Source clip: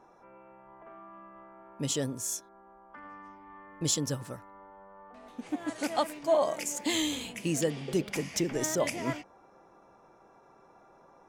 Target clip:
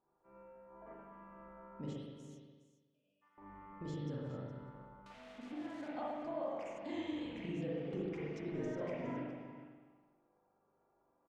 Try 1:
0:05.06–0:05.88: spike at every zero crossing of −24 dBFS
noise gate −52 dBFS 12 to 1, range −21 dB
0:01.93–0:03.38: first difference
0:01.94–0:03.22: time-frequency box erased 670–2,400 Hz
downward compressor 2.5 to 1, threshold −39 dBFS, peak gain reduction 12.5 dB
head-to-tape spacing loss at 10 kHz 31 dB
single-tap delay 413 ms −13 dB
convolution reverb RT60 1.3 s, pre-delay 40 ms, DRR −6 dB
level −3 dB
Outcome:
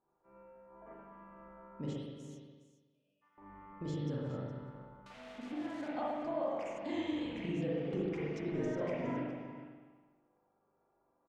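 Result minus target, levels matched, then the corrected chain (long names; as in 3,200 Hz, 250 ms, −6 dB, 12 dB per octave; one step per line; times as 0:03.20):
downward compressor: peak gain reduction −4 dB
0:05.06–0:05.88: spike at every zero crossing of −24 dBFS
noise gate −52 dBFS 12 to 1, range −21 dB
0:01.93–0:03.38: first difference
0:01.94–0:03.22: time-frequency box erased 670–2,400 Hz
downward compressor 2.5 to 1, threshold −46 dBFS, peak gain reduction 16.5 dB
head-to-tape spacing loss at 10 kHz 31 dB
single-tap delay 413 ms −13 dB
convolution reverb RT60 1.3 s, pre-delay 40 ms, DRR −6 dB
level −3 dB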